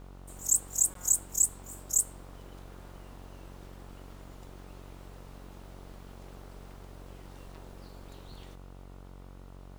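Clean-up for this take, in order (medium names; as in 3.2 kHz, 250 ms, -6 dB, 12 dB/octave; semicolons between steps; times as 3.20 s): de-hum 46.3 Hz, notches 32; interpolate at 0.94 s, 13 ms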